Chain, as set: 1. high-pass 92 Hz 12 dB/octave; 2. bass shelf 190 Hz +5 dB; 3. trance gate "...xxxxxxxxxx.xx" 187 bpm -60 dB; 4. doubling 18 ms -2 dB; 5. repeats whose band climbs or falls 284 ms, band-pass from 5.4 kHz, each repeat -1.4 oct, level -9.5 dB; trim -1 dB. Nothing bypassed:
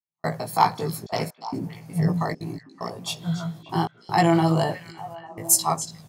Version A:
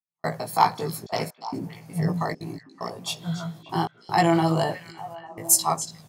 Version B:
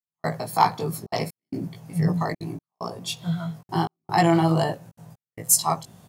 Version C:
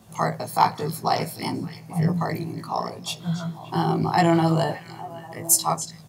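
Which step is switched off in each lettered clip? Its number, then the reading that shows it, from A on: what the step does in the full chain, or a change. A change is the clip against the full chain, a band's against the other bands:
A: 2, 125 Hz band -3.0 dB; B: 5, echo-to-direct -14.5 dB to none; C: 3, momentary loudness spread change -4 LU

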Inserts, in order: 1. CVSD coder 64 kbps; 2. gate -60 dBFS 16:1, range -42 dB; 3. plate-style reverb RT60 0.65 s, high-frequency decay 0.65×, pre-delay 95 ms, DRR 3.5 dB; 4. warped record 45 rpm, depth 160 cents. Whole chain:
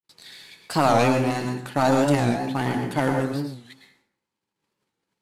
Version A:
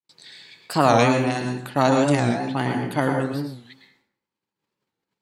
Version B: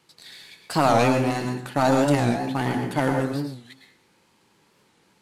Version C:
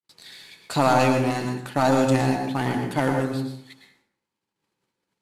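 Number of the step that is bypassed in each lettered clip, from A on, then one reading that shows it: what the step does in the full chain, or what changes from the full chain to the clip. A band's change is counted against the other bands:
1, loudness change +1.5 LU; 2, momentary loudness spread change +2 LU; 4, momentary loudness spread change +2 LU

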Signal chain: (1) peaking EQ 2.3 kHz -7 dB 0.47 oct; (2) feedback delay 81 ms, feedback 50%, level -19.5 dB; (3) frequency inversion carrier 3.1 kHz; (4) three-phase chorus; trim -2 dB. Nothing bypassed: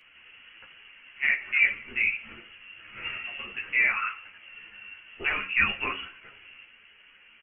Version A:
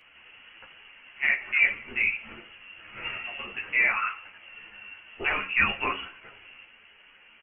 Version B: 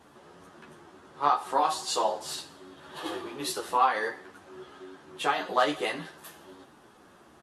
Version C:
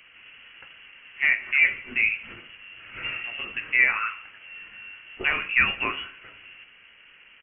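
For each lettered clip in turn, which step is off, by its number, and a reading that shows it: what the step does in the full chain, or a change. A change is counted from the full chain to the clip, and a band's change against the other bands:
1, 2 kHz band -3.0 dB; 3, 2 kHz band -23.5 dB; 4, loudness change +3.0 LU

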